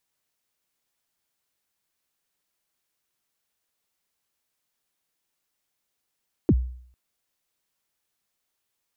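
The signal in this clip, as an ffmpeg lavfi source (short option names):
-f lavfi -i "aevalsrc='0.251*pow(10,-3*t/0.59)*sin(2*PI*(400*0.05/log(62/400)*(exp(log(62/400)*min(t,0.05)/0.05)-1)+62*max(t-0.05,0)))':d=0.45:s=44100"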